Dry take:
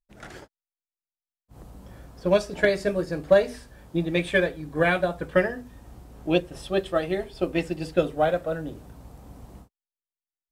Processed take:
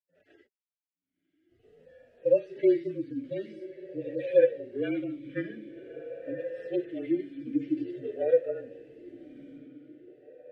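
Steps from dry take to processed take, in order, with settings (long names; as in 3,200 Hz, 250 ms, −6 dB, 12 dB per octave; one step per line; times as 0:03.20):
harmonic-percussive split with one part muted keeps harmonic
automatic gain control gain up to 7 dB
on a send: feedback delay with all-pass diffusion 1,161 ms, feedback 44%, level −14 dB
on the sum: frequency shifter −33 Hz
formant filter swept between two vowels e-i 0.47 Hz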